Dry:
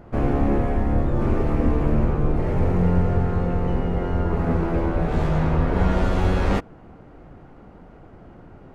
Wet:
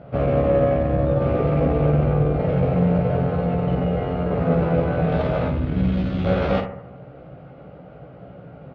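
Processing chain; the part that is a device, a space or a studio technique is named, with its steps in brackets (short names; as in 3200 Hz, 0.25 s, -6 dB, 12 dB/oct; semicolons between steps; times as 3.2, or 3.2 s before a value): 5.48–6.25 EQ curve 310 Hz 0 dB, 510 Hz -16 dB, 3700 Hz -3 dB; analogue delay pedal into a guitar amplifier (analogue delay 73 ms, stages 1024, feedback 51%, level -11 dB; tube stage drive 16 dB, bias 0.4; speaker cabinet 100–3900 Hz, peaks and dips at 150 Hz +7 dB, 220 Hz -8 dB, 350 Hz -9 dB, 560 Hz +7 dB, 970 Hz -10 dB, 1800 Hz -7 dB); early reflections 16 ms -5 dB, 54 ms -9.5 dB; gain +5 dB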